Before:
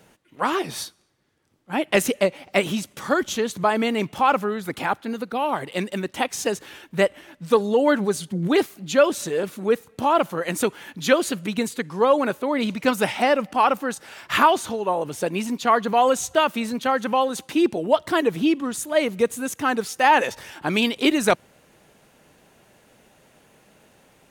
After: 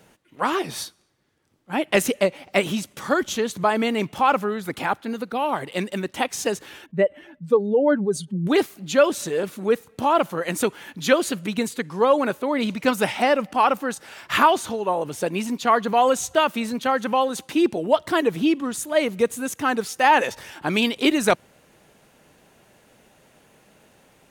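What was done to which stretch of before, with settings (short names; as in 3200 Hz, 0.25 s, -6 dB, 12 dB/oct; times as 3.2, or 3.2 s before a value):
6.86–8.47 spectral contrast raised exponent 1.6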